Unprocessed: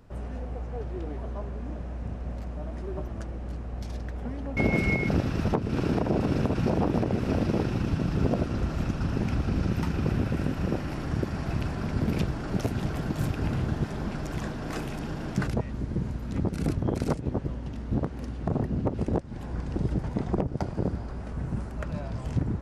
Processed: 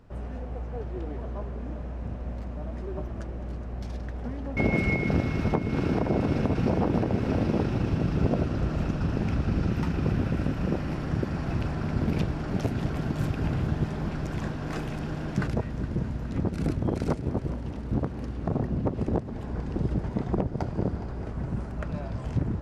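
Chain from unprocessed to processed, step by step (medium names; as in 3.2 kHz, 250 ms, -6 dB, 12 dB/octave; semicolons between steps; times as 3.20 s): treble shelf 6.7 kHz -8.5 dB; multi-head delay 208 ms, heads first and second, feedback 74%, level -17.5 dB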